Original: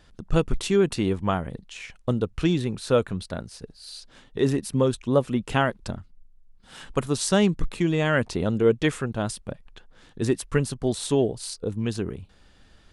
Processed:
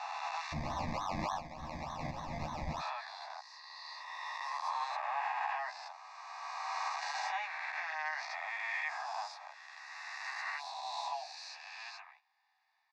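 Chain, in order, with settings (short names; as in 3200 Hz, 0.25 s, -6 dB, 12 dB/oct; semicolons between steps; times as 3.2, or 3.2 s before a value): spectral swells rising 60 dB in 2.99 s; steep high-pass 750 Hz 72 dB/oct; gate -51 dBFS, range -9 dB; high shelf 2700 Hz -9.5 dB; limiter -21 dBFS, peak gain reduction 8.5 dB; 0.52–2.8 decimation with a swept rate 25×, swing 60% 3.4 Hz; air absorption 110 m; fixed phaser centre 2100 Hz, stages 8; doubler 13 ms -2.5 dB; gain -3.5 dB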